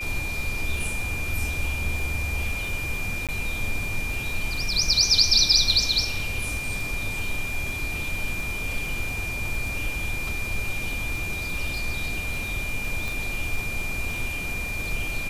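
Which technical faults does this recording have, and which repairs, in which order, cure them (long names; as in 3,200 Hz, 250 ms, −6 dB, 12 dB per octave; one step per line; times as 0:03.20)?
surface crackle 22 per second −31 dBFS
whistle 2,400 Hz −30 dBFS
0:03.27–0:03.29: drop-out 17 ms
0:13.08: click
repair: click removal
notch filter 2,400 Hz, Q 30
repair the gap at 0:03.27, 17 ms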